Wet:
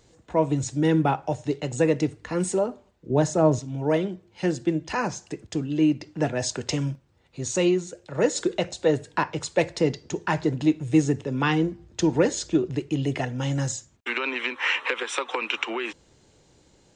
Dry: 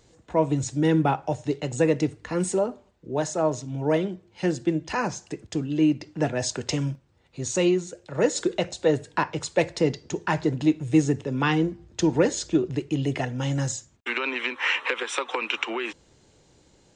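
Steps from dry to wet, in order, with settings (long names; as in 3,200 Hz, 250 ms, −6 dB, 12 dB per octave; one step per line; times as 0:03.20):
0:03.10–0:03.59: low-shelf EQ 380 Hz +11 dB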